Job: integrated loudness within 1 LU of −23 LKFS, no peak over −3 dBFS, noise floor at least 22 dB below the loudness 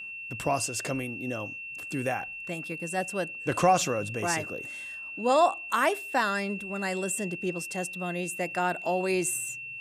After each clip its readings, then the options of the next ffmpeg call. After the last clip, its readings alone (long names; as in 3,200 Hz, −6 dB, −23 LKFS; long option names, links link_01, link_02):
interfering tone 2,700 Hz; level of the tone −37 dBFS; integrated loudness −29.0 LKFS; sample peak −10.5 dBFS; target loudness −23.0 LKFS
→ -af "bandreject=frequency=2700:width=30"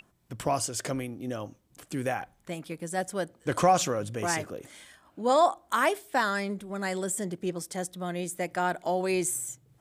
interfering tone none found; integrated loudness −29.5 LKFS; sample peak −10.5 dBFS; target loudness −23.0 LKFS
→ -af "volume=6.5dB"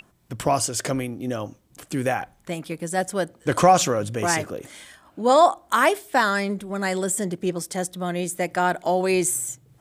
integrated loudness −23.0 LKFS; sample peak −4.0 dBFS; background noise floor −59 dBFS